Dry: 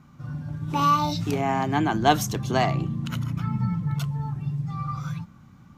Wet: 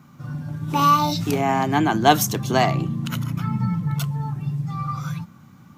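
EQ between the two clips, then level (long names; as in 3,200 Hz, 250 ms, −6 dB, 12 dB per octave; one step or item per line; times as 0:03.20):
high-pass filter 110 Hz
high-shelf EQ 11,000 Hz +11.5 dB
+4.0 dB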